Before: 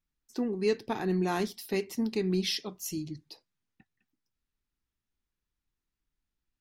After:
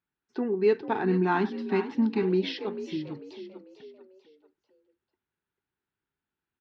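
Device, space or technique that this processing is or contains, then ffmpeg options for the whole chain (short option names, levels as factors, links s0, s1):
frequency-shifting delay pedal into a guitar cabinet: -filter_complex "[0:a]asplit=5[s0][s1][s2][s3][s4];[s1]adelay=444,afreqshift=48,volume=0.266[s5];[s2]adelay=888,afreqshift=96,volume=0.11[s6];[s3]adelay=1332,afreqshift=144,volume=0.0447[s7];[s4]adelay=1776,afreqshift=192,volume=0.0184[s8];[s0][s5][s6][s7][s8]amix=inputs=5:normalize=0,highpass=110,equalizer=f=390:t=q:w=4:g=8,equalizer=f=870:t=q:w=4:g=7,equalizer=f=1500:t=q:w=4:g=8,lowpass=f=3600:w=0.5412,lowpass=f=3600:w=1.3066,asettb=1/sr,asplit=3[s9][s10][s11];[s9]atrim=end=1.044[s12];[s10]atrim=start=1.04:end=2.23,asetpts=PTS-STARTPTS,afade=t=in:d=0.004:c=qsin,afade=t=out:st=1.186:d=0.004:c=qsin,equalizer=f=250:t=o:w=1:g=8,equalizer=f=500:t=o:w=1:g=-11,equalizer=f=1000:t=o:w=1:g=5[s13];[s11]atrim=start=2.226[s14];[s12][s13]acrossfade=d=0.004:c1=hsin:c2=qsin[s15];[s15][s14]acrossfade=d=0.004:c1=qsin:c2=hsin"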